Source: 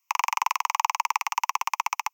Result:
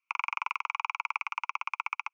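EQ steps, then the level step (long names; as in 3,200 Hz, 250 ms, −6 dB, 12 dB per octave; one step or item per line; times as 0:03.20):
pair of resonant band-passes 1,800 Hz, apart 0.75 octaves
high-frequency loss of the air 55 metres
+2.0 dB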